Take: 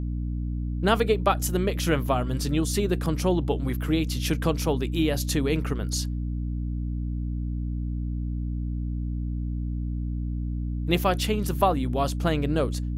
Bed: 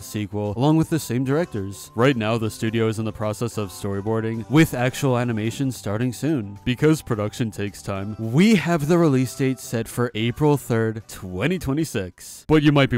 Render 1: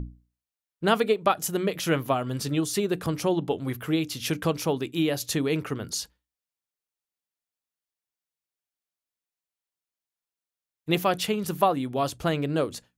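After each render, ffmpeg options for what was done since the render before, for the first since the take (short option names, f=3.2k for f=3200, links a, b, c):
-af "bandreject=f=60:t=h:w=6,bandreject=f=120:t=h:w=6,bandreject=f=180:t=h:w=6,bandreject=f=240:t=h:w=6,bandreject=f=300:t=h:w=6"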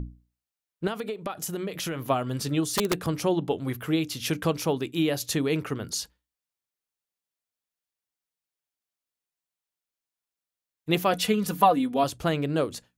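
-filter_complex "[0:a]asettb=1/sr,asplit=3[a][b][c];[a]atrim=end=0.874[d];[b]atrim=start=0.87:end=2.08,asetpts=PTS-STARTPTS,afade=t=in:d=0.004:c=qsin,afade=t=out:st=1.206:d=0.004:c=qsin,acompressor=threshold=-27dB:ratio=16:attack=3.2:release=140:knee=1:detection=peak[e];[c]atrim=start=2.076[f];[d][e]acrossfade=d=0.004:c1=hsin:c2=qsin[g];[g][f]acrossfade=d=0.004:c1=qsin:c2=hsin,asettb=1/sr,asplit=3[h][i][j];[h]atrim=end=2.604[k];[i]atrim=start=2.6:end=3.04,asetpts=PTS-STARTPTS,afade=t=in:d=0.004:c=qsin,afade=t=out:st=0.436:d=0.004:c=qsin,aeval=exprs='(mod(7.5*val(0)+1,2)-1)/7.5':c=same[l];[j]atrim=start=3.036[m];[k][l]acrossfade=d=0.004:c1=hsin:c2=qsin[n];[n][m]acrossfade=d=0.004:c1=qsin:c2=hsin,asettb=1/sr,asplit=3[o][p][q];[o]atrim=end=11.124[r];[p]atrim=start=11.12:end=12.04,asetpts=PTS-STARTPTS,afade=t=in:d=0.004:c=qsin,afade=t=out:st=0.916:d=0.004:c=qsin,aecho=1:1:4.1:0.79,atrim=end_sample=40572[s];[q]atrim=start=12.036[t];[r][s]acrossfade=d=0.004:c1=hsin:c2=qsin[u];[u][t]acrossfade=d=0.004:c1=qsin:c2=hsin"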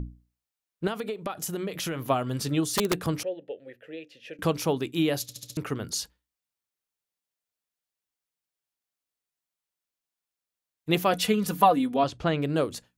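-filter_complex "[0:a]asettb=1/sr,asplit=3[a][b][c];[a]atrim=end=3.234[d];[b]atrim=start=3.23:end=4.39,asetpts=PTS-STARTPTS,afade=t=in:d=0.004:c=qsin,afade=t=out:st=1.156:d=0.004:c=qsin,asplit=3[e][f][g];[e]bandpass=f=530:t=q:w=8,volume=0dB[h];[f]bandpass=f=1.84k:t=q:w=8,volume=-6dB[i];[g]bandpass=f=2.48k:t=q:w=8,volume=-9dB[j];[h][i][j]amix=inputs=3:normalize=0[k];[c]atrim=start=4.386[l];[d][k]acrossfade=d=0.004:c1=hsin:c2=qsin[m];[m][l]acrossfade=d=0.004:c1=qsin:c2=hsin,asettb=1/sr,asplit=3[n][o][p];[n]atrim=end=11.964[q];[o]atrim=start=11.96:end=12.42,asetpts=PTS-STARTPTS,afade=t=in:d=0.004:c=qsin,afade=t=out:st=0.456:d=0.004:c=qsin,lowpass=4.5k[r];[p]atrim=start=12.416[s];[q][r]acrossfade=d=0.004:c1=hsin:c2=qsin[t];[t][s]acrossfade=d=0.004:c1=qsin:c2=hsin,asplit=6[u][v][w][x][y][z];[u]atrim=end=5.292[aa];[v]atrim=start=5.218:end=5.292[ab];[w]atrim=start=5.218:end=5.292[ac];[x]atrim=start=5.218:end=5.292[ad];[y]atrim=start=5.218:end=5.292[ae];[z]atrim=start=5.568[af];[aa][ab]acrossfade=d=0.004:c1=hsin:c2=hsin[ag];[ag][ac]acrossfade=d=0.004:c1=hsin:c2=hsin[ah];[ah][ad]acrossfade=d=0.004:c1=hsin:c2=hsin[ai];[ai][ae]acrossfade=d=0.004:c1=hsin:c2=hsin[aj];[aj][af]acrossfade=d=0.004:c1=hsin:c2=hsin"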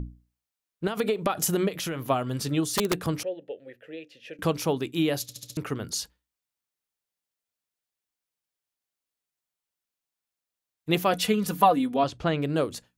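-filter_complex "[0:a]asettb=1/sr,asplit=3[a][b][c];[a]atrim=end=0.974[d];[b]atrim=start=0.97:end=1.69,asetpts=PTS-STARTPTS,afade=t=in:d=0.004:c=qsin,afade=t=out:st=0.716:d=0.004:c=qsin,acontrast=86[e];[c]atrim=start=1.686[f];[d][e]acrossfade=d=0.004:c1=hsin:c2=qsin[g];[g][f]acrossfade=d=0.004:c1=qsin:c2=hsin"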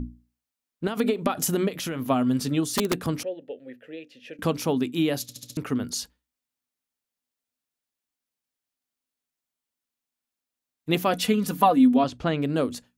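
-af "equalizer=f=250:w=7.5:g=14"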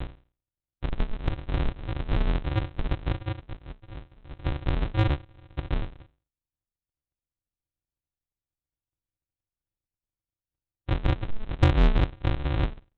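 -af "aresample=8000,acrusher=samples=37:mix=1:aa=0.000001,aresample=44100,asoftclip=type=tanh:threshold=-11dB"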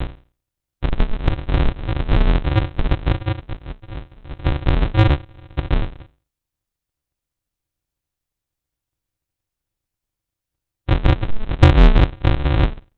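-af "volume=9.5dB"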